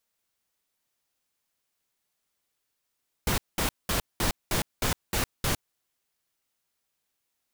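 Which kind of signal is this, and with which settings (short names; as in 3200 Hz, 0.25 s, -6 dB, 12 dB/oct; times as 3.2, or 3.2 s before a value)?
noise bursts pink, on 0.11 s, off 0.20 s, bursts 8, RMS -26 dBFS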